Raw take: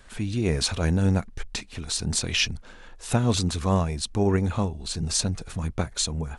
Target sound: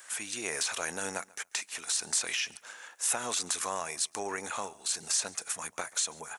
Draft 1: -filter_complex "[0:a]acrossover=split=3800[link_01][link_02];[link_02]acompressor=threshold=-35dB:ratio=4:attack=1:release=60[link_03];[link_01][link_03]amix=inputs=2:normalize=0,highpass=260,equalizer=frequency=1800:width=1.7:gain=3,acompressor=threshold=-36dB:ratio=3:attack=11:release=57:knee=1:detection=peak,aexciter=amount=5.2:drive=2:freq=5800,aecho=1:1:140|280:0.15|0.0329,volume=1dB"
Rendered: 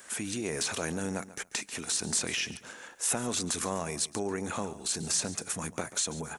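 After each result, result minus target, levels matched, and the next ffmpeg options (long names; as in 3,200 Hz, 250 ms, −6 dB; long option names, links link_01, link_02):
250 Hz band +11.0 dB; echo-to-direct +7.5 dB
-filter_complex "[0:a]acrossover=split=3800[link_01][link_02];[link_02]acompressor=threshold=-35dB:ratio=4:attack=1:release=60[link_03];[link_01][link_03]amix=inputs=2:normalize=0,highpass=770,equalizer=frequency=1800:width=1.7:gain=3,acompressor=threshold=-36dB:ratio=3:attack=11:release=57:knee=1:detection=peak,aexciter=amount=5.2:drive=2:freq=5800,aecho=1:1:140|280:0.15|0.0329,volume=1dB"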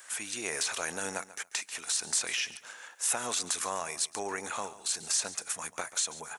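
echo-to-direct +7.5 dB
-filter_complex "[0:a]acrossover=split=3800[link_01][link_02];[link_02]acompressor=threshold=-35dB:ratio=4:attack=1:release=60[link_03];[link_01][link_03]amix=inputs=2:normalize=0,highpass=770,equalizer=frequency=1800:width=1.7:gain=3,acompressor=threshold=-36dB:ratio=3:attack=11:release=57:knee=1:detection=peak,aexciter=amount=5.2:drive=2:freq=5800,aecho=1:1:140|280:0.0631|0.0139,volume=1dB"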